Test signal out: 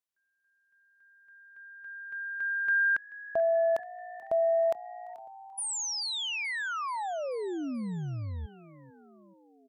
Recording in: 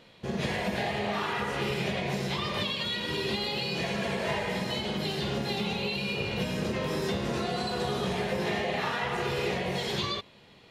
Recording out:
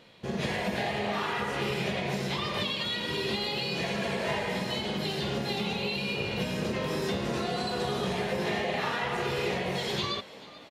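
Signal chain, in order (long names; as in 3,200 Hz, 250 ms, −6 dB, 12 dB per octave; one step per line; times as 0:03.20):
low-shelf EQ 66 Hz −5.5 dB
on a send: echo with shifted repeats 434 ms, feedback 61%, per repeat +58 Hz, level −19 dB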